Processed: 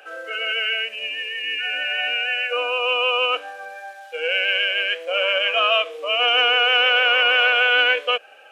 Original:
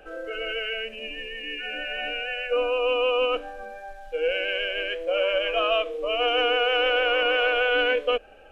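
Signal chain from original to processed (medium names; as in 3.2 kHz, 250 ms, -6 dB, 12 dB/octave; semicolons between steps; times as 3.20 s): Bessel high-pass 1.1 kHz, order 2; trim +9 dB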